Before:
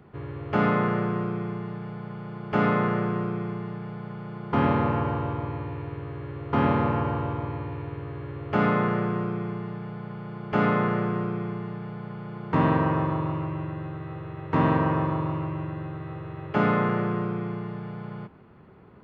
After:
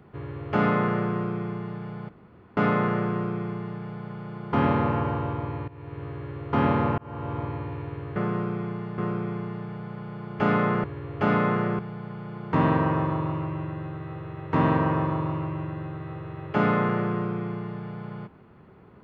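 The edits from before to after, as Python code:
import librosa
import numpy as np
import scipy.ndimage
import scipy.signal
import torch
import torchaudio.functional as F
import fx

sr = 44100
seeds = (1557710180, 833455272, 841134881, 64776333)

y = fx.edit(x, sr, fx.room_tone_fill(start_s=2.09, length_s=0.48),
    fx.fade_in_from(start_s=5.68, length_s=0.36, floor_db=-17.0),
    fx.fade_in_span(start_s=6.98, length_s=0.41),
    fx.swap(start_s=8.16, length_s=0.95, other_s=10.97, other_length_s=0.82), tone=tone)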